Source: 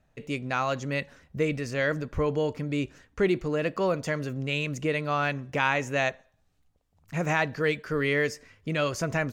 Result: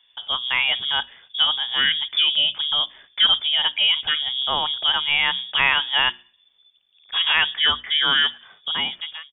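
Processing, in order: ending faded out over 0.85 s; inverted band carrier 3500 Hz; notches 60/120/180/240/300/360 Hz; gain +6.5 dB

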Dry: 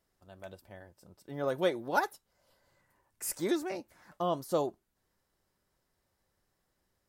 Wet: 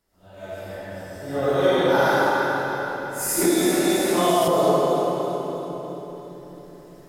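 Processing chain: phase scrambler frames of 0.2 s; recorder AGC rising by 5.1 dB/s; split-band echo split 350 Hz, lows 0.609 s, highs 0.331 s, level -8.5 dB; digital reverb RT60 3.4 s, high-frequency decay 0.75×, pre-delay 40 ms, DRR -8 dB; 3.41–4.48 three-band squash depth 100%; gain +4 dB

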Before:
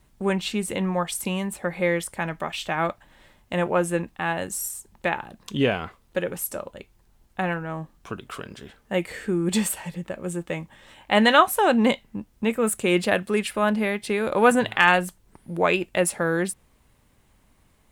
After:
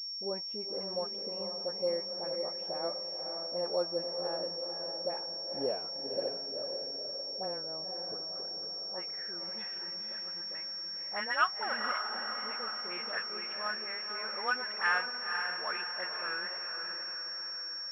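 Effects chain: band-pass sweep 540 Hz -> 1500 Hz, 8.38–9.2; dispersion highs, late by 65 ms, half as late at 1200 Hz; on a send: diffused feedback echo 0.51 s, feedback 55%, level -5 dB; on the sum: pulse-width modulation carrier 5500 Hz; gain -7.5 dB

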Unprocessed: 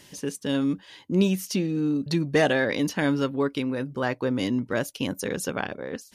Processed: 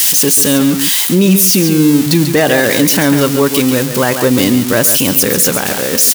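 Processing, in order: switching spikes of -19.5 dBFS; echo 0.14 s -10 dB; maximiser +16.5 dB; gain -1 dB

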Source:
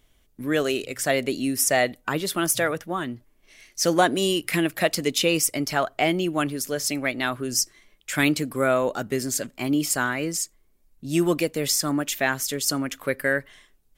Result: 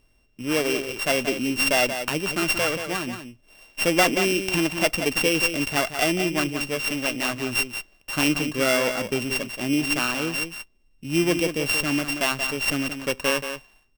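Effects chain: sample sorter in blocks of 16 samples; echo 0.18 s -8.5 dB; running maximum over 3 samples

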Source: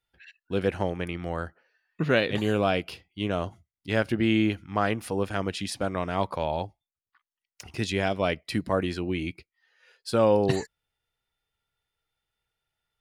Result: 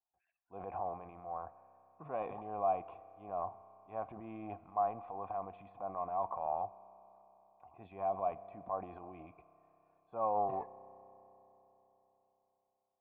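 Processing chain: transient shaper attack -4 dB, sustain +10 dB; vocal tract filter a; spring tank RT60 3.9 s, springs 31 ms, chirp 80 ms, DRR 17 dB; gain +2 dB

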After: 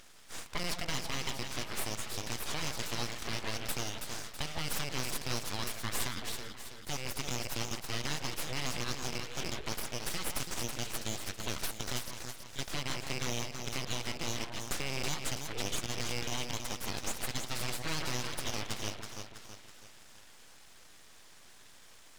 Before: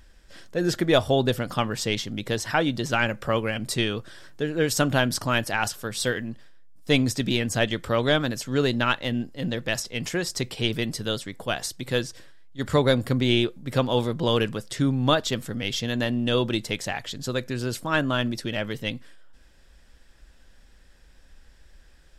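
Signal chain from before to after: rattling part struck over -26 dBFS, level -18 dBFS; weighting filter D; compressor 12:1, threshold -29 dBFS, peak gain reduction 22 dB; limiter -20 dBFS, peak gain reduction 9 dB; echo with dull and thin repeats by turns 0.163 s, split 1300 Hz, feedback 69%, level -3 dB; full-wave rectifier

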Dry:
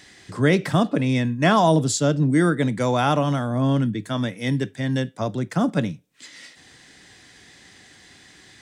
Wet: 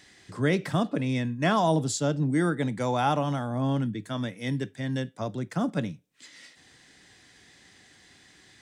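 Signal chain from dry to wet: 1.69–3.87 bell 820 Hz +7 dB 0.22 oct; gain -6.5 dB

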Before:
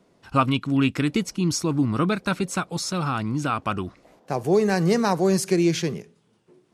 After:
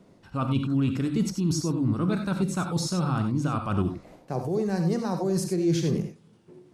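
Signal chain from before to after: reverse; compressor 10:1, threshold -28 dBFS, peak gain reduction 14 dB; reverse; low shelf 380 Hz +8 dB; non-linear reverb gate 0.11 s rising, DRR 5.5 dB; dynamic EQ 2300 Hz, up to -6 dB, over -52 dBFS, Q 1.8

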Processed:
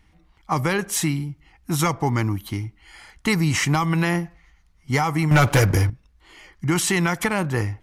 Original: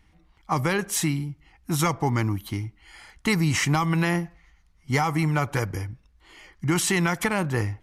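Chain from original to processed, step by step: 5.31–5.9 sample leveller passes 3; gain +2 dB

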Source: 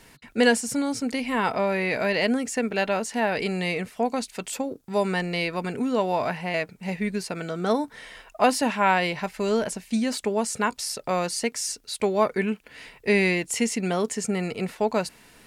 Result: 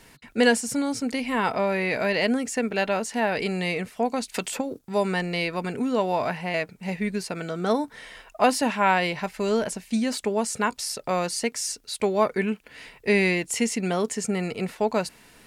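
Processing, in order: 4.34–4.79 three-band squash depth 100%

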